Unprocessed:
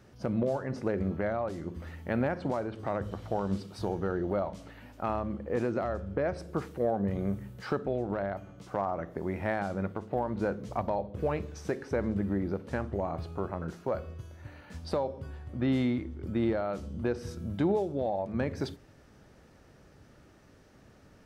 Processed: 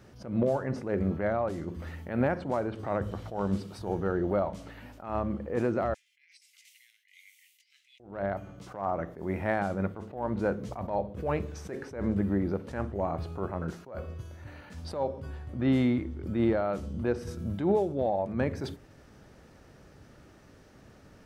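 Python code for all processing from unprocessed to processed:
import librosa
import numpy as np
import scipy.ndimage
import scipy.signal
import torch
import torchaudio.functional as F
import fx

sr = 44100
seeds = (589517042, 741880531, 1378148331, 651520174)

y = fx.chain(x, sr, fx.cheby_ripple_highpass(hz=2000.0, ripple_db=3),
    fx.over_compress(threshold_db=-59.0, ratio=-0.5), at=(5.94, 8.0))
y = fx.dynamic_eq(y, sr, hz=4700.0, q=1.2, threshold_db=-55.0, ratio=4.0, max_db=-4)
y = fx.attack_slew(y, sr, db_per_s=120.0)
y = y * 10.0 ** (3.0 / 20.0)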